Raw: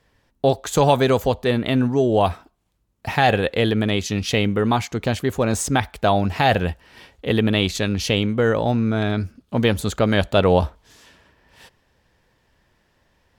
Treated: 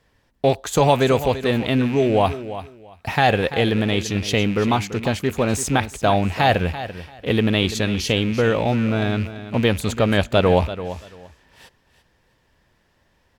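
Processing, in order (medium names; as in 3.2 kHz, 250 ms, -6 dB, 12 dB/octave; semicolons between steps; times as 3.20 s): rattle on loud lows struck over -32 dBFS, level -24 dBFS; on a send: feedback delay 338 ms, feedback 20%, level -13 dB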